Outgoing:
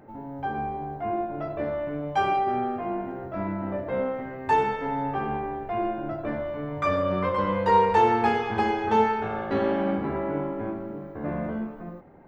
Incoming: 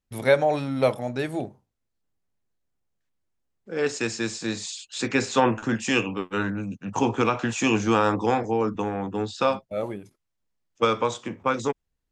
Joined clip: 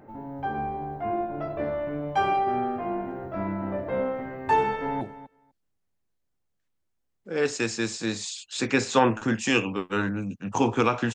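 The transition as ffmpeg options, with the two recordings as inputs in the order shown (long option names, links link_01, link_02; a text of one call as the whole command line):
ffmpeg -i cue0.wav -i cue1.wav -filter_complex "[0:a]apad=whole_dur=11.14,atrim=end=11.14,atrim=end=5.012[link_01];[1:a]atrim=start=1.418:end=7.55[link_02];[link_01][link_02]acrossfade=duration=0.004:curve1=hsin:curve2=hsin,asplit=2[link_03][link_04];[link_04]afade=type=in:start_time=4.66:duration=0.01,afade=type=out:start_time=5.01:duration=0.01,aecho=0:1:250|500:0.177828|0.0177828[link_05];[link_03][link_05]amix=inputs=2:normalize=0" out.wav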